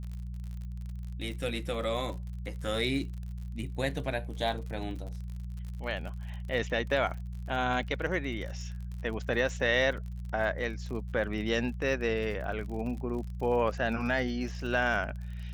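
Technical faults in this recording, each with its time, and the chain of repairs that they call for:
crackle 51/s -39 dBFS
hum 60 Hz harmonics 3 -38 dBFS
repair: de-click; de-hum 60 Hz, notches 3

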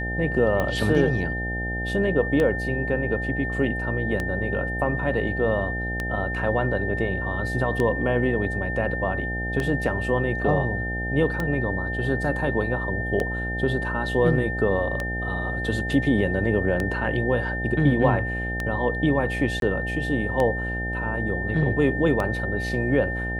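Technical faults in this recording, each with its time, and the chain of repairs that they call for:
buzz 60 Hz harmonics 14 -30 dBFS
tick 33 1/3 rpm -13 dBFS
tone 1800 Hz -29 dBFS
19.6–19.62 gap 22 ms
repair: de-click; de-hum 60 Hz, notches 14; notch 1800 Hz, Q 30; interpolate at 19.6, 22 ms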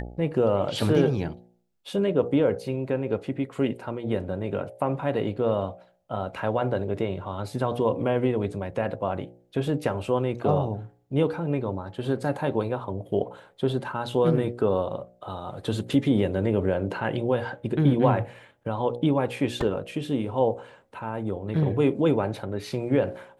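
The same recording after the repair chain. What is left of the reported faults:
none

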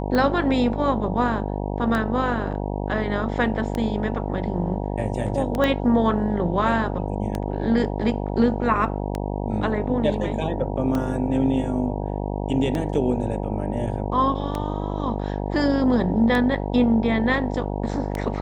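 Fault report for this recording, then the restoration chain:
buzz 50 Hz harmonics 19 -27 dBFS
tick 33 1/3 rpm -13 dBFS
5.64 pop -10 dBFS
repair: de-click; de-hum 50 Hz, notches 19

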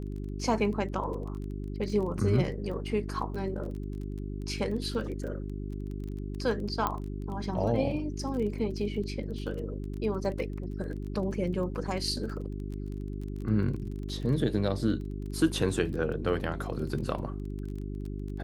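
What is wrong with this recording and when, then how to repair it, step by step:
crackle 20/s -37 dBFS
hum 50 Hz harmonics 8 -36 dBFS
6.87 pop -15 dBFS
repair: de-click; de-hum 50 Hz, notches 8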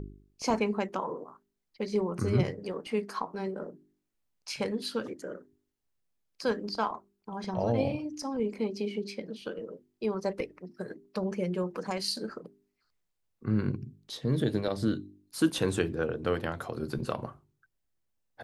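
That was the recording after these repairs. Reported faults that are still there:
none

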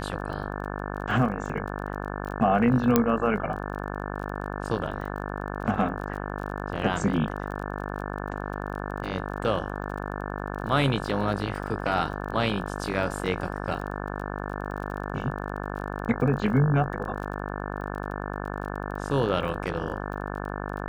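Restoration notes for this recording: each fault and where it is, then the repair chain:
buzz 50 Hz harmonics 35 -33 dBFS
crackle 27/s -36 dBFS
2.96 pop -5 dBFS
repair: de-click; de-hum 50 Hz, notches 35

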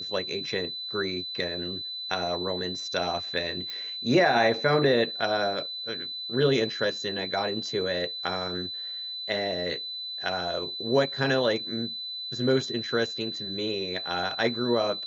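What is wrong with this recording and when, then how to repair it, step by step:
tone 4000 Hz -33 dBFS
3.7 pop -21 dBFS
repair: de-click; notch 4000 Hz, Q 30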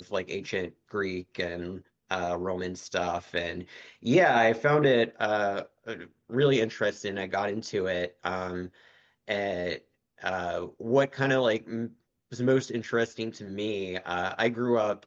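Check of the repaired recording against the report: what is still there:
none

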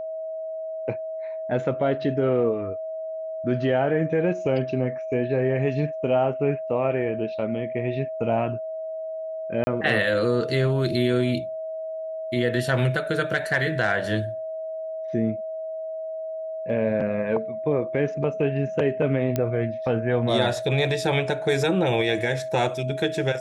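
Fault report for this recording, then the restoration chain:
tone 640 Hz -29 dBFS
9.64–9.67 gap 30 ms
19.36 pop -11 dBFS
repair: de-click; notch 640 Hz, Q 30; interpolate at 9.64, 30 ms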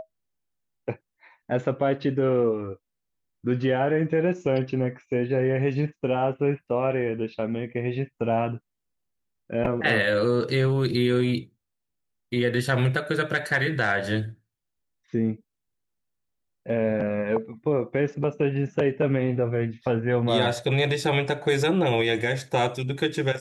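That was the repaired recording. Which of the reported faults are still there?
none

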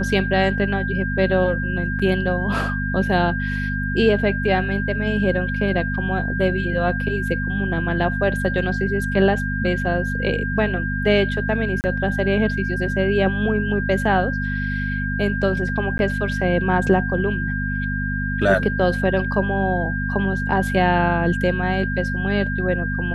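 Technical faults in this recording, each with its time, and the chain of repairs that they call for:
hum 50 Hz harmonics 5 -25 dBFS
tone 1600 Hz -26 dBFS
1.99–2 gap 5.3 ms
11.81–11.84 gap 29 ms
15.98–15.99 gap 11 ms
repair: notch 1600 Hz, Q 30; de-hum 50 Hz, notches 5; interpolate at 1.99, 5.3 ms; interpolate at 11.81, 29 ms; interpolate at 15.98, 11 ms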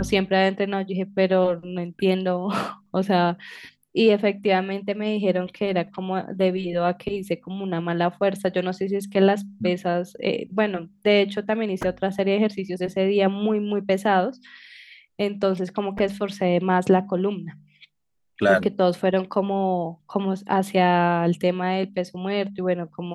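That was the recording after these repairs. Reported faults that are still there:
none

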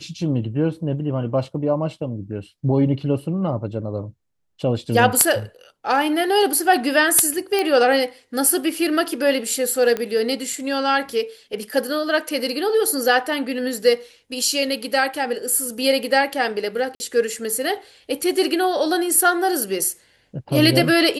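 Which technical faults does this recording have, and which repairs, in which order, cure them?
7.59 pop -8 dBFS
9.97 pop -11 dBFS
16.95–17 gap 50 ms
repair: de-click; interpolate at 16.95, 50 ms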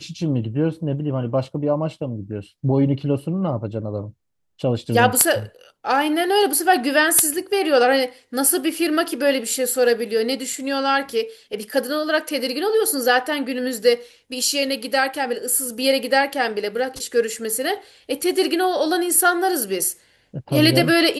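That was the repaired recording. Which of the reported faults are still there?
none

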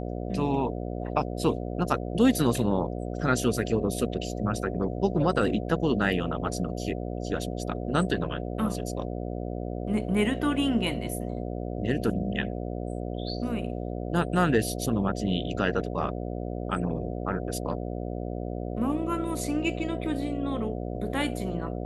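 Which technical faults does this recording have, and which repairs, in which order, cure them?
buzz 60 Hz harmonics 12 -33 dBFS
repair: de-hum 60 Hz, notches 12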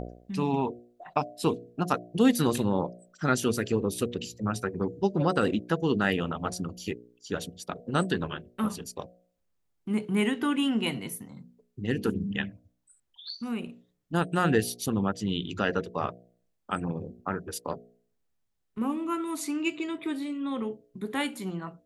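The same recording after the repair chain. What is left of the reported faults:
none

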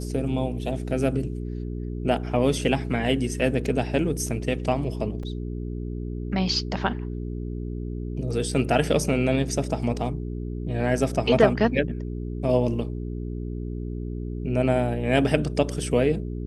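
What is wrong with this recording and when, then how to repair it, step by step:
hum 60 Hz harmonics 7 -31 dBFS
5.23 gap 3.6 ms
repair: de-hum 60 Hz, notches 7; interpolate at 5.23, 3.6 ms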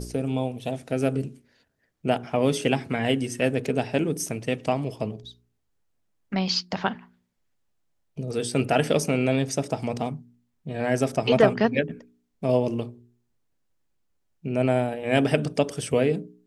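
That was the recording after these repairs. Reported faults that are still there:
none

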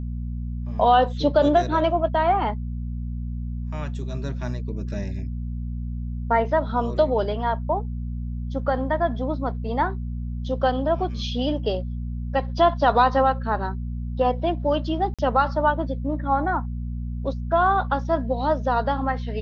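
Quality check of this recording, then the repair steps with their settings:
hum 60 Hz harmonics 4 -29 dBFS
15.14–15.19 gap 46 ms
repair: de-hum 60 Hz, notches 4; interpolate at 15.14, 46 ms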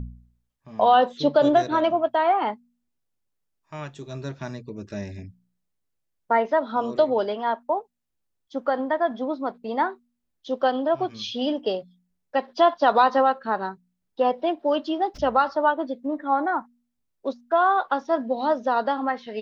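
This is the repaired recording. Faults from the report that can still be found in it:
none

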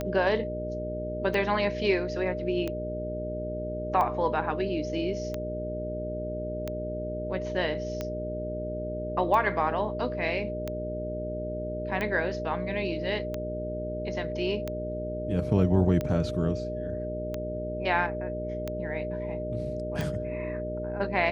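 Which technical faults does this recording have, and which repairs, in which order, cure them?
hum 60 Hz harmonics 8 -36 dBFS
tick 45 rpm -18 dBFS
tone 610 Hz -33 dBFS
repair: de-click; de-hum 60 Hz, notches 8; notch 610 Hz, Q 30

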